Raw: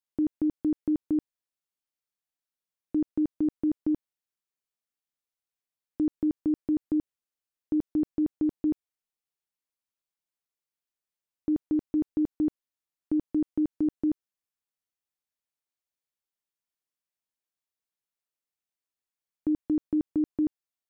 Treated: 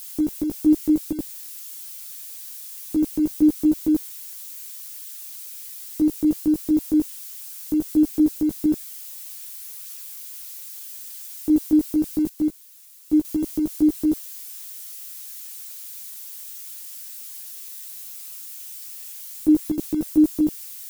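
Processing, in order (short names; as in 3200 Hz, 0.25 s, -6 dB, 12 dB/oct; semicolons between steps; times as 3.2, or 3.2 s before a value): switching spikes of -36.5 dBFS; chorus voices 6, 0.21 Hz, delay 16 ms, depth 3.5 ms; 12.29–13.25 upward expander 1.5:1, over -44 dBFS; gain +8.5 dB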